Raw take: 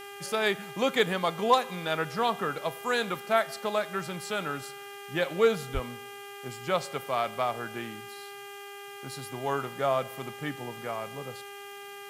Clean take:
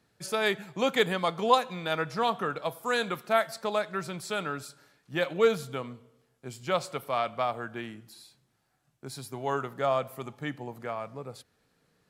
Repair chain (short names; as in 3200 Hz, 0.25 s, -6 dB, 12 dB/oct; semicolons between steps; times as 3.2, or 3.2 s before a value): clip repair -11 dBFS; de-hum 402 Hz, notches 8; 5.73–5.85 HPF 140 Hz 24 dB/oct; noise print and reduce 27 dB